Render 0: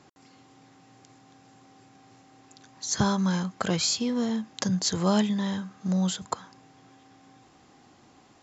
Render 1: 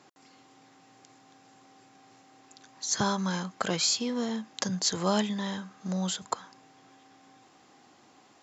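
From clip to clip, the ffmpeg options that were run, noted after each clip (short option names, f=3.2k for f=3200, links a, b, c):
-af "highpass=f=320:p=1"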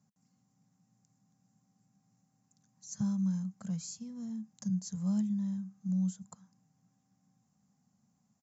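-af "firequalizer=gain_entry='entry(110,0);entry(200,7);entry(310,-27);entry(550,-19);entry(3300,-27);entry(6100,-9)':delay=0.05:min_phase=1,volume=-5.5dB"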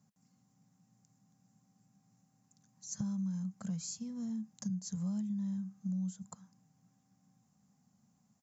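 -af "acompressor=threshold=-36dB:ratio=6,volume=2dB"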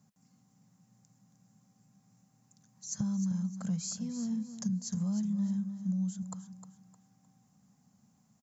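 -af "aecho=1:1:307|614|921:0.299|0.0925|0.0287,volume=4dB"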